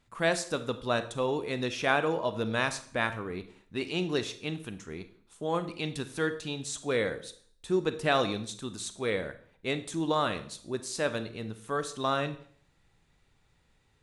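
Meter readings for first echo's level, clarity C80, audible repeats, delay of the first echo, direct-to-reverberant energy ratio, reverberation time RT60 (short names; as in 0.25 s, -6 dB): none, 17.0 dB, none, none, 10.5 dB, 0.50 s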